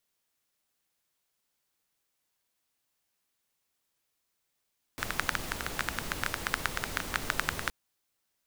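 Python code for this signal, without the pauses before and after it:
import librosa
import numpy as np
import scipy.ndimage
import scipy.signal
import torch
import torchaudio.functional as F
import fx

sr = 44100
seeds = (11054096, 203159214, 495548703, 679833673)

y = fx.rain(sr, seeds[0], length_s=2.72, drops_per_s=11.0, hz=1500.0, bed_db=-2.0)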